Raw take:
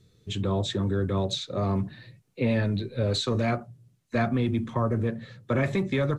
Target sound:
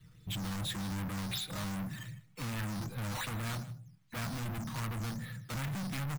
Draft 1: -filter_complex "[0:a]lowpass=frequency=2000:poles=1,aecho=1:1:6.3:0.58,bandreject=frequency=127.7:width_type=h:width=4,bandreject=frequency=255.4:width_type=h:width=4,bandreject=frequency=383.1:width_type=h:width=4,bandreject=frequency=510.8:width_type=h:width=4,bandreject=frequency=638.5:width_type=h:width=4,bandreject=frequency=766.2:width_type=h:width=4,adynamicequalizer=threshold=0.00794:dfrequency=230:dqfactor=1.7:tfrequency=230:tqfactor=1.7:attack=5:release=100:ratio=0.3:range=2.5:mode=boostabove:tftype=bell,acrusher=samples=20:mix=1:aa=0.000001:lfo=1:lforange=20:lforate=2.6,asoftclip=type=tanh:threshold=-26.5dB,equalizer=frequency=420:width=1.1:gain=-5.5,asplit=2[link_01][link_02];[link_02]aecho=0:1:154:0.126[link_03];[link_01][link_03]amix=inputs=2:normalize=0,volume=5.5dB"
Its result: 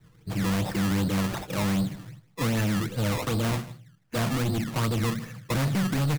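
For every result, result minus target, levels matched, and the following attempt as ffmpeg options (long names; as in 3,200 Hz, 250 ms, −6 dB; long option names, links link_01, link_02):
sample-and-hold swept by an LFO: distortion +9 dB; 500 Hz band +5.5 dB; soft clipping: distortion −6 dB
-filter_complex "[0:a]lowpass=frequency=2000:poles=1,aecho=1:1:6.3:0.58,bandreject=frequency=127.7:width_type=h:width=4,bandreject=frequency=255.4:width_type=h:width=4,bandreject=frequency=383.1:width_type=h:width=4,bandreject=frequency=510.8:width_type=h:width=4,bandreject=frequency=638.5:width_type=h:width=4,bandreject=frequency=766.2:width_type=h:width=4,adynamicequalizer=threshold=0.00794:dfrequency=230:dqfactor=1.7:tfrequency=230:tqfactor=1.7:attack=5:release=100:ratio=0.3:range=2.5:mode=boostabove:tftype=bell,acrusher=samples=6:mix=1:aa=0.000001:lfo=1:lforange=6:lforate=2.6,asoftclip=type=tanh:threshold=-26.5dB,equalizer=frequency=420:width=1.1:gain=-5.5,asplit=2[link_01][link_02];[link_02]aecho=0:1:154:0.126[link_03];[link_01][link_03]amix=inputs=2:normalize=0,volume=5.5dB"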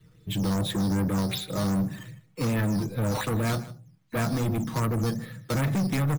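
500 Hz band +6.0 dB; soft clipping: distortion −6 dB
-filter_complex "[0:a]lowpass=frequency=2000:poles=1,aecho=1:1:6.3:0.58,bandreject=frequency=127.7:width_type=h:width=4,bandreject=frequency=255.4:width_type=h:width=4,bandreject=frequency=383.1:width_type=h:width=4,bandreject=frequency=510.8:width_type=h:width=4,bandreject=frequency=638.5:width_type=h:width=4,bandreject=frequency=766.2:width_type=h:width=4,adynamicequalizer=threshold=0.00794:dfrequency=230:dqfactor=1.7:tfrequency=230:tqfactor=1.7:attack=5:release=100:ratio=0.3:range=2.5:mode=boostabove:tftype=bell,acrusher=samples=6:mix=1:aa=0.000001:lfo=1:lforange=6:lforate=2.6,asoftclip=type=tanh:threshold=-26.5dB,equalizer=frequency=420:width=1.1:gain=-16.5,asplit=2[link_01][link_02];[link_02]aecho=0:1:154:0.126[link_03];[link_01][link_03]amix=inputs=2:normalize=0,volume=5.5dB"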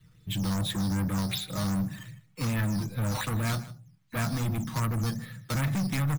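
soft clipping: distortion −6 dB
-filter_complex "[0:a]lowpass=frequency=2000:poles=1,aecho=1:1:6.3:0.58,bandreject=frequency=127.7:width_type=h:width=4,bandreject=frequency=255.4:width_type=h:width=4,bandreject=frequency=383.1:width_type=h:width=4,bandreject=frequency=510.8:width_type=h:width=4,bandreject=frequency=638.5:width_type=h:width=4,bandreject=frequency=766.2:width_type=h:width=4,adynamicequalizer=threshold=0.00794:dfrequency=230:dqfactor=1.7:tfrequency=230:tqfactor=1.7:attack=5:release=100:ratio=0.3:range=2.5:mode=boostabove:tftype=bell,acrusher=samples=6:mix=1:aa=0.000001:lfo=1:lforange=6:lforate=2.6,asoftclip=type=tanh:threshold=-37.5dB,equalizer=frequency=420:width=1.1:gain=-16.5,asplit=2[link_01][link_02];[link_02]aecho=0:1:154:0.126[link_03];[link_01][link_03]amix=inputs=2:normalize=0,volume=5.5dB"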